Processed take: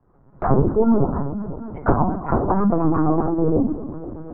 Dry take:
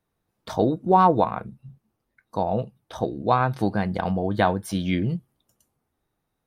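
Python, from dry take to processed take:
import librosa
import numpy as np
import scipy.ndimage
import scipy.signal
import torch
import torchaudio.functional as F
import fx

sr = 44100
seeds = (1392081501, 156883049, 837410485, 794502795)

y = fx.speed_glide(x, sr, from_pct=107, to_pct=191)
y = fx.recorder_agc(y, sr, target_db=-11.0, rise_db_per_s=22.0, max_gain_db=30)
y = scipy.signal.sosfilt(scipy.signal.butter(4, 1300.0, 'lowpass', fs=sr, output='sos'), y)
y = fx.env_lowpass_down(y, sr, base_hz=430.0, full_db=-16.5)
y = fx.highpass(y, sr, hz=66.0, slope=6)
y = fx.low_shelf(y, sr, hz=100.0, db=10.5)
y = fx.echo_feedback(y, sr, ms=244, feedback_pct=59, wet_db=-16)
y = fx.rev_fdn(y, sr, rt60_s=0.48, lf_ratio=1.2, hf_ratio=0.35, size_ms=43.0, drr_db=-1.5)
y = fx.lpc_vocoder(y, sr, seeds[0], excitation='pitch_kept', order=16)
y = fx.band_squash(y, sr, depth_pct=40)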